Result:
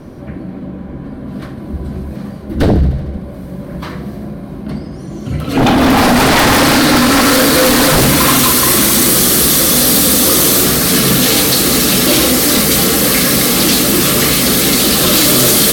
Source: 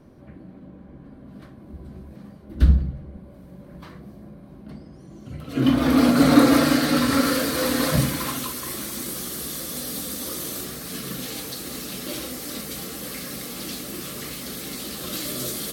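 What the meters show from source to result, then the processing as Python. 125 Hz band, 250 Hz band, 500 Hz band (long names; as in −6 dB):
+10.5 dB, +9.5 dB, +14.0 dB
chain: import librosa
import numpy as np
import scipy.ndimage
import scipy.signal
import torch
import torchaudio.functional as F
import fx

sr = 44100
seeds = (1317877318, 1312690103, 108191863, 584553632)

y = fx.rider(x, sr, range_db=4, speed_s=0.5)
y = fx.fold_sine(y, sr, drive_db=17, ceiling_db=-5.0)
y = fx.echo_thinned(y, sr, ms=76, feedback_pct=73, hz=420.0, wet_db=-13.5)
y = y * 10.0 ** (-1.0 / 20.0)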